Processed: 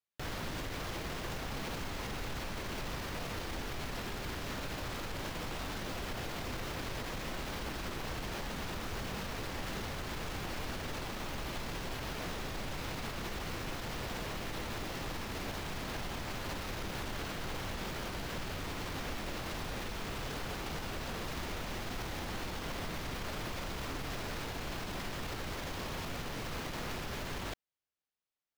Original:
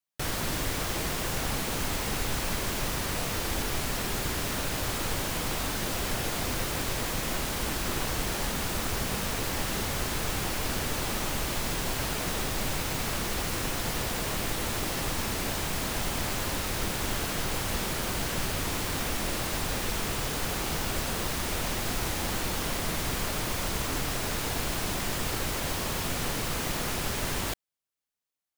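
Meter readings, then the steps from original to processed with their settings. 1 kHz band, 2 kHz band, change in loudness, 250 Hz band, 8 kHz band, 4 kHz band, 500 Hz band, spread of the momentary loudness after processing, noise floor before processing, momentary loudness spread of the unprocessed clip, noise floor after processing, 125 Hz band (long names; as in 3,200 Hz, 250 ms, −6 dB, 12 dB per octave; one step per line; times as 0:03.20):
−7.5 dB, −8.0 dB, −9.5 dB, −7.5 dB, −15.5 dB, −9.5 dB, −7.5 dB, 1 LU, −32 dBFS, 0 LU, −41 dBFS, −8.0 dB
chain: running median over 5 samples
brickwall limiter −27 dBFS, peak gain reduction 9 dB
level −3.5 dB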